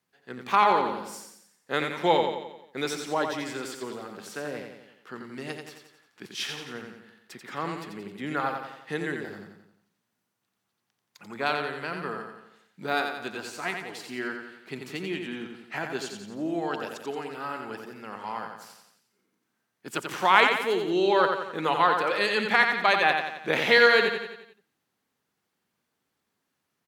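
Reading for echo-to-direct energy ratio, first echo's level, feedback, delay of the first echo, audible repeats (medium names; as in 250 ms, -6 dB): -4.0 dB, -5.5 dB, 51%, 88 ms, 6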